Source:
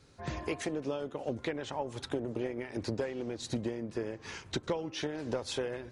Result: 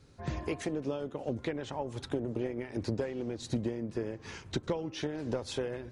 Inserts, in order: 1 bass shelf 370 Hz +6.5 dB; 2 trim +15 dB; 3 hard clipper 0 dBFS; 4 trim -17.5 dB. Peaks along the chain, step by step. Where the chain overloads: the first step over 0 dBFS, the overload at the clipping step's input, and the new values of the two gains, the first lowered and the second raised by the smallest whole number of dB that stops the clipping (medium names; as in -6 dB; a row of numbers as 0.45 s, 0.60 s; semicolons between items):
-17.0 dBFS, -2.0 dBFS, -2.0 dBFS, -19.5 dBFS; nothing clips